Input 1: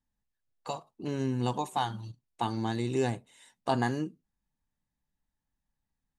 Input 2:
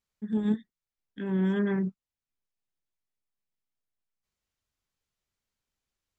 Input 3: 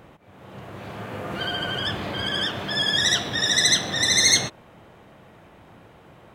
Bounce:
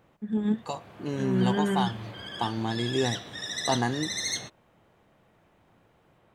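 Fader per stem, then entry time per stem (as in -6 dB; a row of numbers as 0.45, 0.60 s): +1.5, +0.5, -13.5 dB; 0.00, 0.00, 0.00 s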